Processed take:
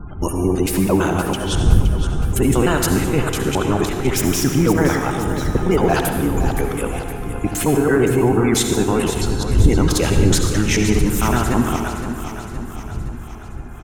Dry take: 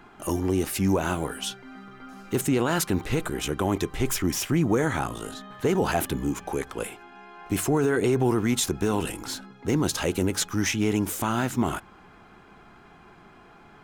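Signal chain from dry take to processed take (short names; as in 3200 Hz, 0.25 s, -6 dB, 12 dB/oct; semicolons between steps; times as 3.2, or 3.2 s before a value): local time reversal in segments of 0.111 s; wind noise 99 Hz -30 dBFS; spectral gate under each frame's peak -30 dB strong; feedback echo 0.517 s, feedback 55%, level -10 dB; reverb RT60 1.4 s, pre-delay 58 ms, DRR 4.5 dB; gain +6 dB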